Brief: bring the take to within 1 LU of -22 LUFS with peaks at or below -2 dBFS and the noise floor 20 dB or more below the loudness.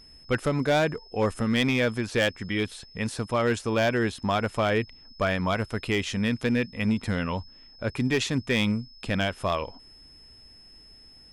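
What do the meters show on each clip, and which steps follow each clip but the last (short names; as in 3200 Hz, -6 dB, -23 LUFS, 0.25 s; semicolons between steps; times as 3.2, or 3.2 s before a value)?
clipped 0.7%; flat tops at -17.0 dBFS; steady tone 5200 Hz; tone level -50 dBFS; loudness -27.0 LUFS; peak -17.0 dBFS; loudness target -22.0 LUFS
-> clip repair -17 dBFS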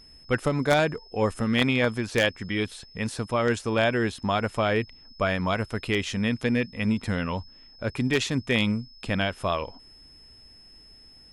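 clipped 0.0%; steady tone 5200 Hz; tone level -50 dBFS
-> notch 5200 Hz, Q 30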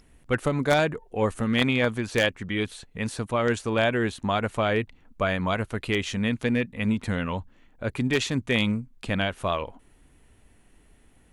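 steady tone none; loudness -26.5 LUFS; peak -8.0 dBFS; loudness target -22.0 LUFS
-> gain +4.5 dB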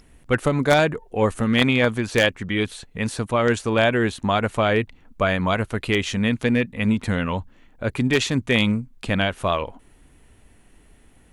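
loudness -22.0 LUFS; peak -3.5 dBFS; noise floor -54 dBFS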